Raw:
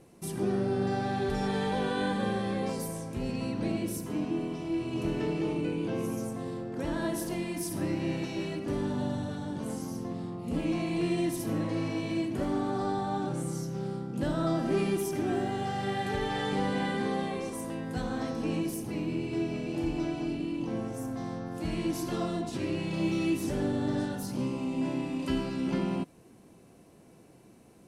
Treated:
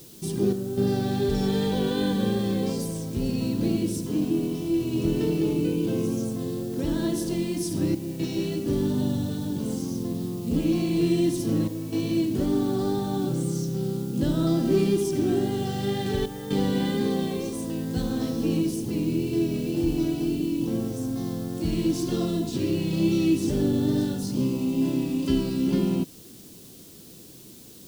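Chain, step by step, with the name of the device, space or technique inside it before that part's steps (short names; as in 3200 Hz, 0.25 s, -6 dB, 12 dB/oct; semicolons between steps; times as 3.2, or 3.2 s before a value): worn cassette (LPF 8400 Hz; wow and flutter 23 cents; level dips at 0.53/7.95/11.68/16.26, 0.242 s -8 dB; white noise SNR 24 dB); band shelf 1200 Hz -10 dB 2.4 oct; gain +7 dB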